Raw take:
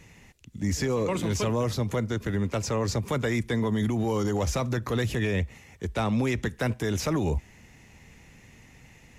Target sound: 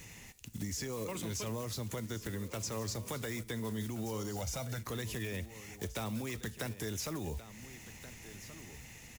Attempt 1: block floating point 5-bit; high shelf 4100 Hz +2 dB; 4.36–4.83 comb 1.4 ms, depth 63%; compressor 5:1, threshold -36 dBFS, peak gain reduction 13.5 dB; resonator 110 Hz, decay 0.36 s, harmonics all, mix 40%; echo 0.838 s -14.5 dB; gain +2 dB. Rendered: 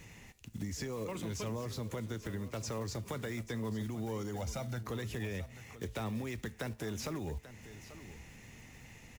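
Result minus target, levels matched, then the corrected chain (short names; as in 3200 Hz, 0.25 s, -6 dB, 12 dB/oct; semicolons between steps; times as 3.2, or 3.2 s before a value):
echo 0.59 s early; 8000 Hz band -5.5 dB
block floating point 5-bit; high shelf 4100 Hz +12 dB; 4.36–4.83 comb 1.4 ms, depth 63%; compressor 5:1, threshold -36 dBFS, peak gain reduction 15 dB; resonator 110 Hz, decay 0.36 s, harmonics all, mix 40%; echo 1.428 s -14.5 dB; gain +2 dB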